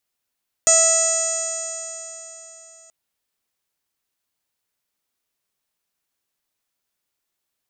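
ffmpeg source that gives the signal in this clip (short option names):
-f lavfi -i "aevalsrc='0.119*pow(10,-3*t/3.72)*sin(2*PI*652.3*t)+0.0422*pow(10,-3*t/3.72)*sin(2*PI*1306.42*t)+0.0335*pow(10,-3*t/3.72)*sin(2*PI*1964.17*t)+0.0266*pow(10,-3*t/3.72)*sin(2*PI*2627.33*t)+0.0158*pow(10,-3*t/3.72)*sin(2*PI*3297.68*t)+0.0168*pow(10,-3*t/3.72)*sin(2*PI*3976.95*t)+0.0224*pow(10,-3*t/3.72)*sin(2*PI*4666.83*t)+0.0335*pow(10,-3*t/3.72)*sin(2*PI*5368.98*t)+0.0944*pow(10,-3*t/3.72)*sin(2*PI*6085.01*t)+0.224*pow(10,-3*t/3.72)*sin(2*PI*6816.44*t)+0.0422*pow(10,-3*t/3.72)*sin(2*PI*7564.78*t)+0.119*pow(10,-3*t/3.72)*sin(2*PI*8331.44*t)':d=2.23:s=44100"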